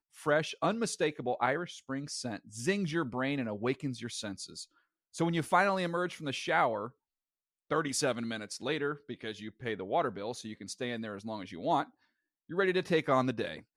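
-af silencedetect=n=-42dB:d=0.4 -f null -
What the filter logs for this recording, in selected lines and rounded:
silence_start: 4.64
silence_end: 5.15 | silence_duration: 0.51
silence_start: 6.88
silence_end: 7.71 | silence_duration: 0.82
silence_start: 11.84
silence_end: 12.50 | silence_duration: 0.66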